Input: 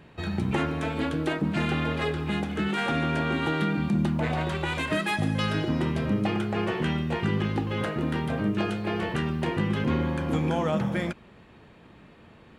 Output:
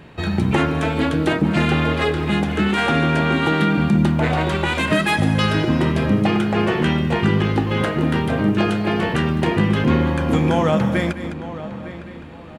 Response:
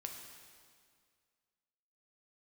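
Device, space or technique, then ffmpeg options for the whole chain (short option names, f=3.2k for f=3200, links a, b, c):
ducked delay: -filter_complex "[0:a]asplit=2[a][b];[b]adelay=908,lowpass=f=2.6k:p=1,volume=-13.5dB,asplit=2[c][d];[d]adelay=908,lowpass=f=2.6k:p=1,volume=0.31,asplit=2[e][f];[f]adelay=908,lowpass=f=2.6k:p=1,volume=0.31[g];[a][c][e][g]amix=inputs=4:normalize=0,asplit=3[h][i][j];[i]adelay=207,volume=-5dB[k];[j]apad=whole_len=600930[l];[k][l]sidechaincompress=threshold=-38dB:ratio=8:attack=16:release=258[m];[h][m]amix=inputs=2:normalize=0,volume=8.5dB"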